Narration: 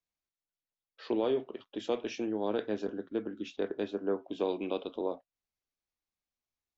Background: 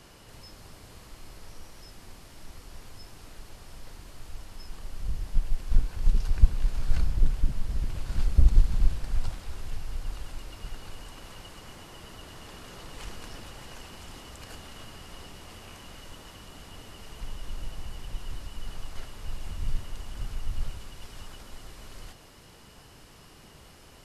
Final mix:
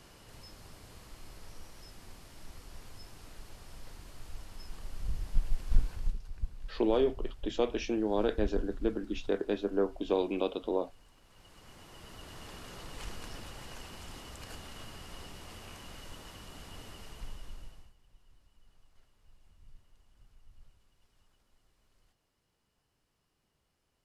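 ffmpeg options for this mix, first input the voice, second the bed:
ffmpeg -i stem1.wav -i stem2.wav -filter_complex "[0:a]adelay=5700,volume=2.5dB[link_01];[1:a]volume=12dB,afade=type=out:start_time=5.89:duration=0.29:silence=0.199526,afade=type=in:start_time=11.28:duration=1.14:silence=0.16788,afade=type=out:start_time=16.88:duration=1.06:silence=0.0595662[link_02];[link_01][link_02]amix=inputs=2:normalize=0" out.wav

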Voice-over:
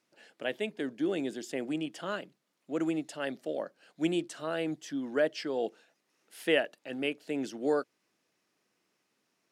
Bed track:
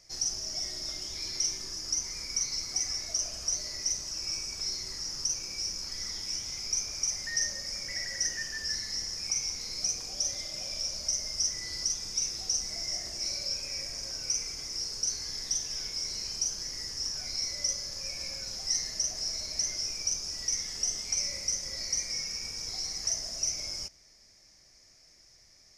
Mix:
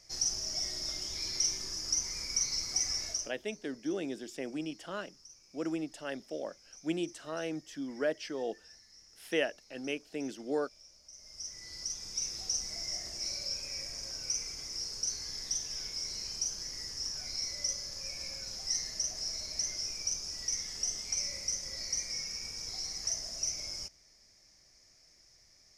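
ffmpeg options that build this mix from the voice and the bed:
ffmpeg -i stem1.wav -i stem2.wav -filter_complex "[0:a]adelay=2850,volume=-4dB[link_01];[1:a]volume=19.5dB,afade=type=out:start_time=3.05:duration=0.28:silence=0.0707946,afade=type=in:start_time=11.11:duration=1.28:silence=0.1[link_02];[link_01][link_02]amix=inputs=2:normalize=0" out.wav

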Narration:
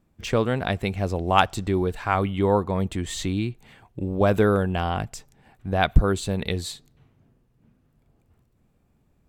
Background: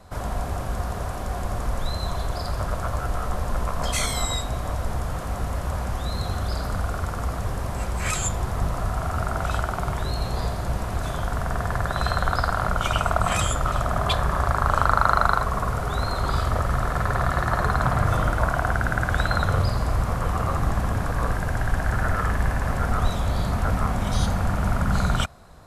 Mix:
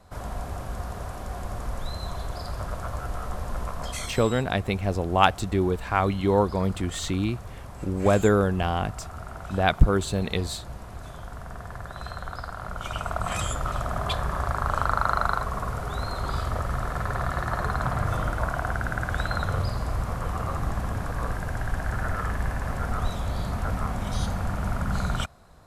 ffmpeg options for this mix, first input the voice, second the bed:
ffmpeg -i stem1.wav -i stem2.wav -filter_complex "[0:a]adelay=3850,volume=-0.5dB[link_01];[1:a]volume=2dB,afade=type=out:start_time=3.67:duration=0.56:silence=0.446684,afade=type=in:start_time=12.59:duration=0.92:silence=0.421697[link_02];[link_01][link_02]amix=inputs=2:normalize=0" out.wav

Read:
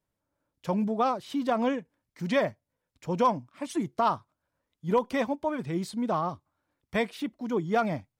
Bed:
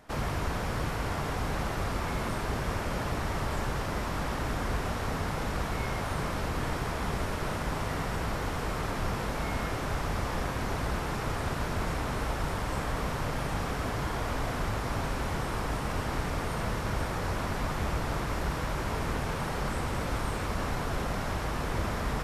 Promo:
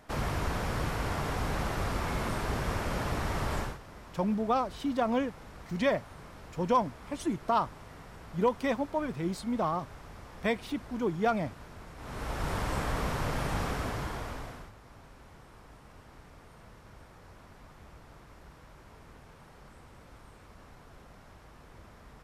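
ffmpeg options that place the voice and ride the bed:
ffmpeg -i stem1.wav -i stem2.wav -filter_complex "[0:a]adelay=3500,volume=-2dB[link_01];[1:a]volume=16dB,afade=type=out:start_time=3.58:duration=0.2:silence=0.158489,afade=type=in:start_time=11.96:duration=0.6:silence=0.149624,afade=type=out:start_time=13.63:duration=1.09:silence=0.0841395[link_02];[link_01][link_02]amix=inputs=2:normalize=0" out.wav

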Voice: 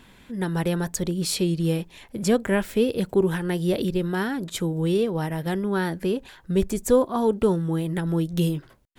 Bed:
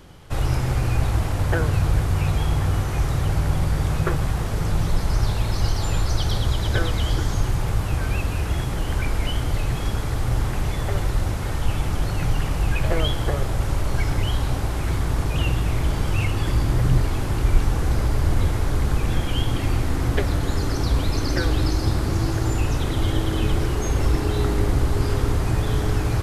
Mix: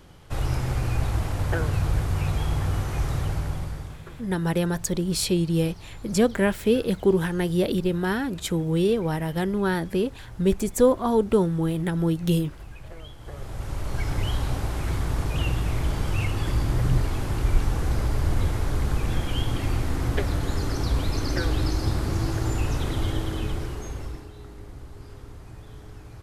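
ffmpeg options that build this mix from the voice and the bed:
ffmpeg -i stem1.wav -i stem2.wav -filter_complex "[0:a]adelay=3900,volume=0.5dB[link_01];[1:a]volume=13dB,afade=type=out:start_time=3.16:duration=0.84:silence=0.149624,afade=type=in:start_time=13.19:duration=1.06:silence=0.141254,afade=type=out:start_time=22.9:duration=1.41:silence=0.125893[link_02];[link_01][link_02]amix=inputs=2:normalize=0" out.wav

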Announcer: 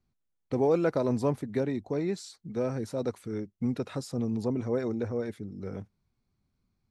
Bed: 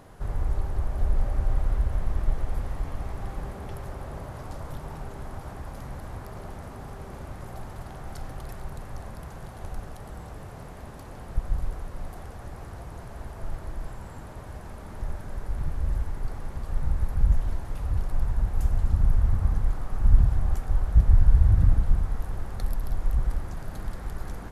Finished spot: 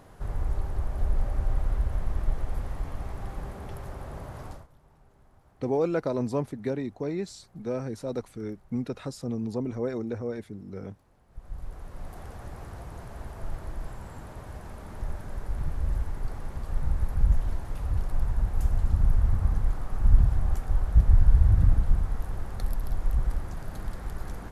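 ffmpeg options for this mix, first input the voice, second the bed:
ffmpeg -i stem1.wav -i stem2.wav -filter_complex "[0:a]adelay=5100,volume=-1dB[link_01];[1:a]volume=19dB,afade=type=out:start_time=4.47:duration=0.2:silence=0.1,afade=type=in:start_time=11.29:duration=1.01:silence=0.0891251[link_02];[link_01][link_02]amix=inputs=2:normalize=0" out.wav

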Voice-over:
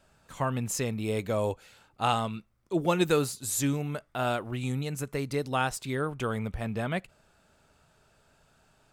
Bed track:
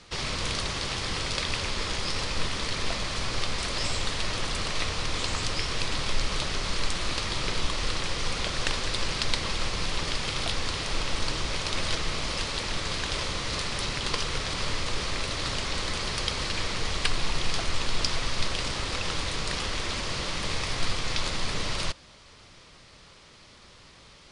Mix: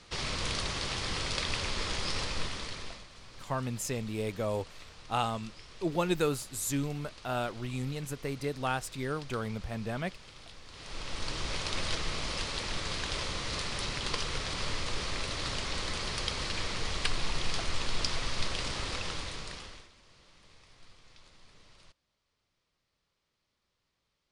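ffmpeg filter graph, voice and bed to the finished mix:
ffmpeg -i stem1.wav -i stem2.wav -filter_complex "[0:a]adelay=3100,volume=-4dB[link_01];[1:a]volume=13.5dB,afade=type=out:start_time=2.19:duration=0.88:silence=0.125893,afade=type=in:start_time=10.68:duration=0.83:silence=0.141254,afade=type=out:start_time=18.88:duration=1.02:silence=0.0595662[link_02];[link_01][link_02]amix=inputs=2:normalize=0" out.wav

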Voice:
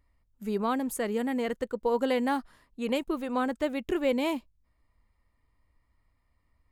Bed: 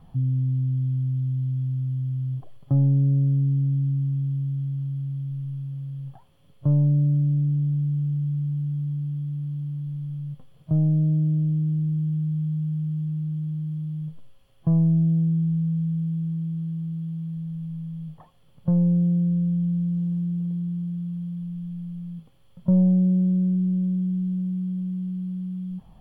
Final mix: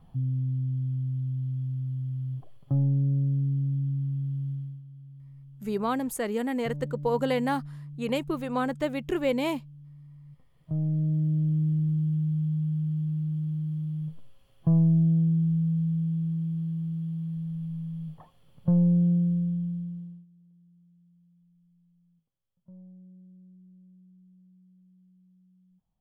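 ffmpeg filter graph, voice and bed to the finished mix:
ffmpeg -i stem1.wav -i stem2.wav -filter_complex "[0:a]adelay=5200,volume=0.5dB[link_01];[1:a]volume=11dB,afade=type=out:start_time=4.51:duration=0.31:silence=0.237137,afade=type=in:start_time=10.24:duration=1.4:silence=0.158489,afade=type=out:start_time=19.12:duration=1.14:silence=0.0334965[link_02];[link_01][link_02]amix=inputs=2:normalize=0" out.wav

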